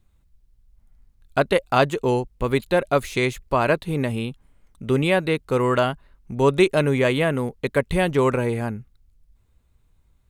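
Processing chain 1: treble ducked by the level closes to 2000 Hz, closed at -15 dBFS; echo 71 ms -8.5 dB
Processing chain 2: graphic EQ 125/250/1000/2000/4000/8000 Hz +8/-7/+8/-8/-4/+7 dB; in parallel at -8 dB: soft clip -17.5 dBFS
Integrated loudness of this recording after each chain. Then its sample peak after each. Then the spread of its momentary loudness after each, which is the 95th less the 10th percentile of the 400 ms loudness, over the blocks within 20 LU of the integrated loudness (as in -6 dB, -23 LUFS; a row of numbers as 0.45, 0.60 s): -21.5, -19.0 LUFS; -5.0, -1.5 dBFS; 9, 8 LU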